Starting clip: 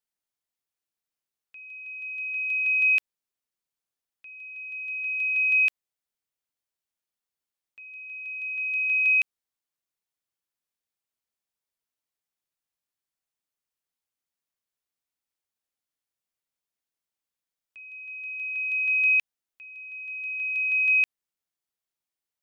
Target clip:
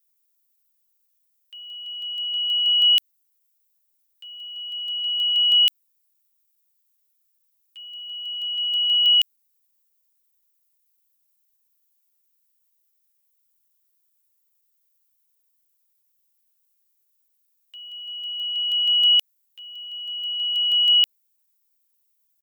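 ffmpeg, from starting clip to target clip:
-af "asetrate=50951,aresample=44100,atempo=0.865537,aemphasis=mode=production:type=riaa"

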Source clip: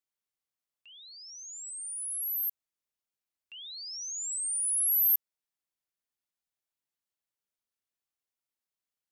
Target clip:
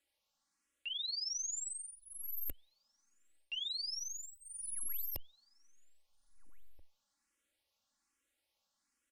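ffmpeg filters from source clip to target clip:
-filter_complex "[0:a]aeval=exprs='(tanh(20*val(0)+0.7)-tanh(0.7))/20':c=same,aecho=1:1:3.6:0.73,alimiter=level_in=3dB:limit=-24dB:level=0:latency=1:release=149,volume=-3dB,lowpass=9.5k,asplit=2[a][b];[b]adelay=1633,volume=-23dB,highshelf=f=4k:g=-36.7[c];[a][c]amix=inputs=2:normalize=0,areverse,acompressor=threshold=-52dB:ratio=6,areverse,asplit=2[d][e];[e]afreqshift=1.2[f];[d][f]amix=inputs=2:normalize=1,volume=16dB"

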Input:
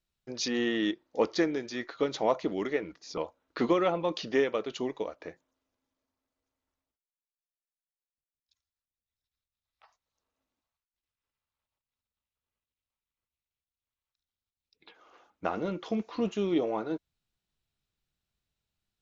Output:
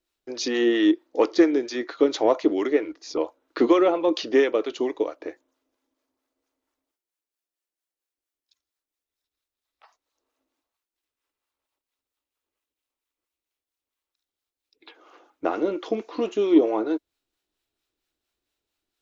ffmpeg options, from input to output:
-filter_complex "[0:a]acrossover=split=670[a][b];[a]aeval=exprs='val(0)*(1-0.5/2+0.5/2*cos(2*PI*4.4*n/s))':c=same[c];[b]aeval=exprs='val(0)*(1-0.5/2-0.5/2*cos(2*PI*4.4*n/s))':c=same[d];[c][d]amix=inputs=2:normalize=0,lowshelf=f=230:t=q:w=3:g=-9.5,acontrast=86"

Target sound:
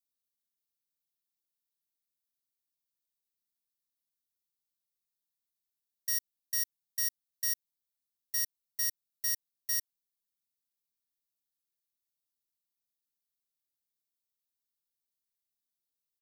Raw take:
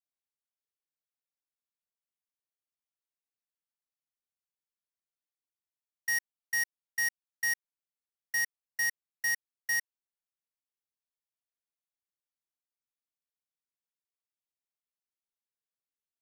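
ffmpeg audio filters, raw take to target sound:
-af "firequalizer=gain_entry='entry(300,0);entry(760,-27);entry(3800,3);entry(7300,2);entry(15000,9)':delay=0.05:min_phase=1"

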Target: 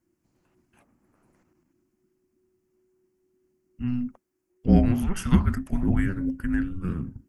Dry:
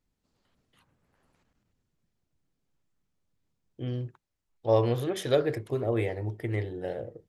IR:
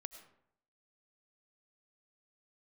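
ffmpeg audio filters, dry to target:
-af "afreqshift=-370,equalizer=f=3.7k:t=o:w=0.61:g=-15,volume=5.5dB"

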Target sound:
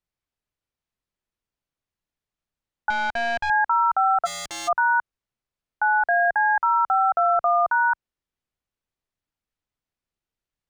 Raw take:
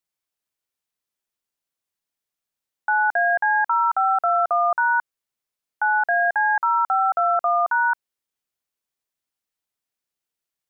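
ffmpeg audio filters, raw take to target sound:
-filter_complex "[0:a]aemphasis=mode=reproduction:type=bsi,asettb=1/sr,asplit=3[a][b][c];[a]atrim=end=2.904[d];[b]atrim=start=2.9:end=3.5,asetpts=PTS-STARTPTS,afade=t=in:d=0.004:c=qsin,afade=t=out:st=0.596:d=0.004:c=qsin,aeval=exprs='(tanh(11.2*val(0)+0.45)-tanh(0.45))/11.2':c=same[e];[c]atrim=start=3.496[f];[d][e]acrossfade=d=0.004:c1=hsin:c2=qsin[g];[g][f]acrossfade=d=0.004:c1=qsin:c2=hsin,asplit=3[h][i][j];[h]afade=t=out:st=4.25:d=0.02[k];[i]aeval=exprs='0.0398*(abs(mod(val(0)/0.0398+3,4)-2)-1)':c=same,afade=t=in:st=4.25:d=0.02,afade=t=out:st=4.67:d=0.02[l];[j]afade=t=in:st=4.67:d=0.02[m];[k][l][m]amix=inputs=3:normalize=0"

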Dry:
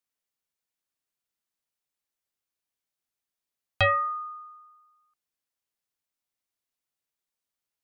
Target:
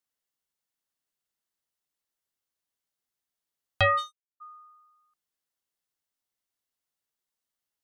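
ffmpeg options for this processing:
-filter_complex "[0:a]bandreject=f=2.4k:w=12,asplit=3[a][b][c];[a]afade=t=out:st=3.97:d=0.02[d];[b]acrusher=bits=3:mix=0:aa=0.5,afade=t=in:st=3.97:d=0.02,afade=t=out:st=4.4:d=0.02[e];[c]afade=t=in:st=4.4:d=0.02[f];[d][e][f]amix=inputs=3:normalize=0"

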